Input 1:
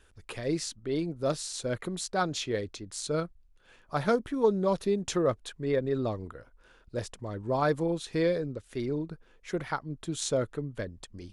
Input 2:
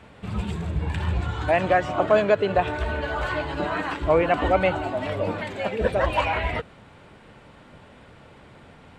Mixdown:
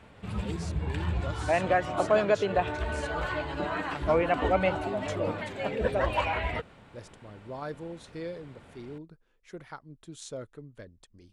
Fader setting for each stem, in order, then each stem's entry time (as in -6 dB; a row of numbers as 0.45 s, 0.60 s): -11.0 dB, -5.0 dB; 0.00 s, 0.00 s